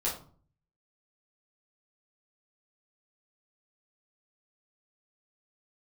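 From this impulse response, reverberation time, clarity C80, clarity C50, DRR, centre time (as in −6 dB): 0.45 s, 12.0 dB, 7.0 dB, −8.0 dB, 30 ms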